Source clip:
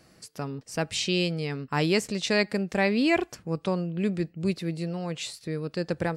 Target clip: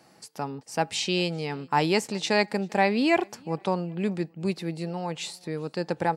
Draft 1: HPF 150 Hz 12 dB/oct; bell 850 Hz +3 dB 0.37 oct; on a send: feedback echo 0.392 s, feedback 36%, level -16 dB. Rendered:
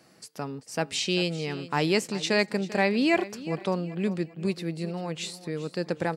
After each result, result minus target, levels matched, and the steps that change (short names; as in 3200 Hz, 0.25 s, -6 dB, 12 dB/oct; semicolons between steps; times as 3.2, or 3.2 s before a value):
echo-to-direct +12 dB; 1000 Hz band -4.5 dB
change: feedback echo 0.392 s, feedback 36%, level -28 dB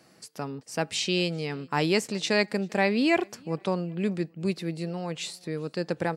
1000 Hz band -4.5 dB
change: bell 850 Hz +11.5 dB 0.37 oct